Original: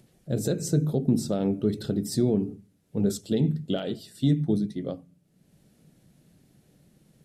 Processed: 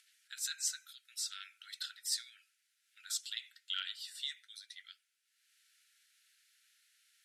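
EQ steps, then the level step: brick-wall FIR high-pass 1300 Hz; band-pass 2000 Hz, Q 0.65; tilt +3.5 dB/oct; -1.5 dB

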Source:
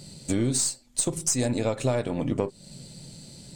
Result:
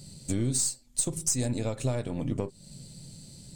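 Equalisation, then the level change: low shelf 190 Hz +11 dB; high shelf 4900 Hz +9 dB; -8.5 dB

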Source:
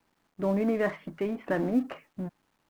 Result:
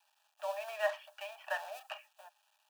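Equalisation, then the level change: rippled Chebyshev high-pass 590 Hz, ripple 9 dB; Butterworth band-stop 2100 Hz, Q 3.3; high shelf 2800 Hz +11 dB; +2.0 dB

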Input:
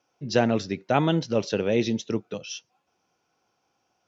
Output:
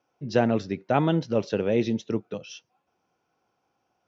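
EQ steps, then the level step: high shelf 3400 Hz -11 dB; 0.0 dB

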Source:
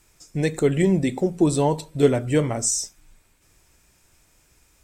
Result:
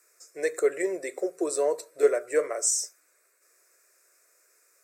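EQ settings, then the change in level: HPF 400 Hz 24 dB/oct; fixed phaser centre 860 Hz, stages 6; 0.0 dB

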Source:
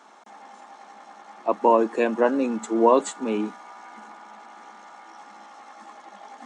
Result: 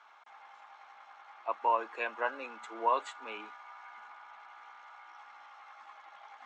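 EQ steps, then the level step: HPF 1400 Hz 12 dB/oct; LPF 2500 Hz 12 dB/oct; notch 1800 Hz, Q 10; 0.0 dB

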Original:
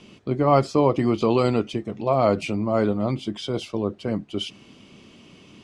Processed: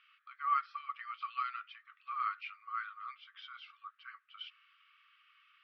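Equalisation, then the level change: brick-wall FIR band-pass 1100–6000 Hz; air absorption 470 m; bell 1400 Hz +6.5 dB 1.2 oct; -7.5 dB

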